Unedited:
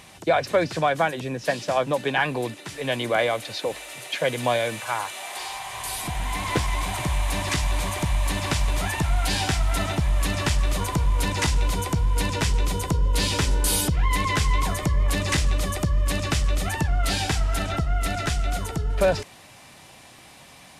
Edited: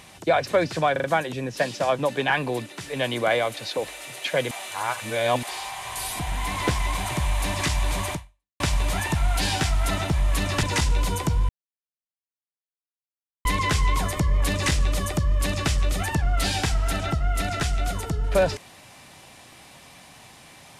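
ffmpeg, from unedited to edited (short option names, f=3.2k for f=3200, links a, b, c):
-filter_complex "[0:a]asplit=10[a][b][c][d][e][f][g][h][i][j];[a]atrim=end=0.962[k];[b]atrim=start=0.918:end=0.962[l];[c]atrim=start=0.918:end=0.962[m];[d]atrim=start=0.918:end=4.392[n];[e]atrim=start=4.388:end=5.312,asetpts=PTS-STARTPTS,areverse[o];[f]atrim=start=5.308:end=8.48,asetpts=PTS-STARTPTS,afade=t=out:st=2.702:d=0.47:c=exp[p];[g]atrim=start=8.48:end=10.512,asetpts=PTS-STARTPTS,afade=t=in:d=0.004:c=hsin[q];[h]atrim=start=11.288:end=12.15,asetpts=PTS-STARTPTS,afade=t=out:st=0.858:d=0.004:c=hsin[r];[i]atrim=start=12.15:end=14.11,asetpts=PTS-STARTPTS,volume=0[s];[j]atrim=start=14.11,asetpts=PTS-STARTPTS,afade=t=in:d=0.004:c=hsin[t];[k][l]acrossfade=d=0.004:c1=hsin:c2=hsin[u];[u][m]acrossfade=d=0.004:c1=hsin:c2=hsin[v];[v][n]acrossfade=d=0.004:c1=hsin:c2=hsin[w];[w][o]acrossfade=d=0.004:c1=hsin:c2=hsin[x];[p][q]concat=n=2:v=0:a=1[y];[x][y]acrossfade=d=0.004:c1=hsin:c2=hsin[z];[r][s][t]concat=n=3:v=0:a=1[aa];[z][aa]acrossfade=d=0.004:c1=hsin:c2=hsin"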